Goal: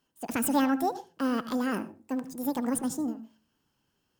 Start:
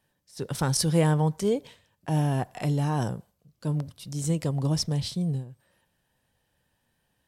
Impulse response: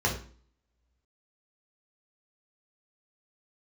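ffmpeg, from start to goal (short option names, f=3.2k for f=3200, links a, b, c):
-filter_complex "[0:a]asetrate=76440,aresample=44100,asplit=2[a][b];[1:a]atrim=start_sample=2205,asetrate=70560,aresample=44100,adelay=73[c];[b][c]afir=irnorm=-1:irlink=0,volume=-22dB[d];[a][d]amix=inputs=2:normalize=0,volume=-3dB"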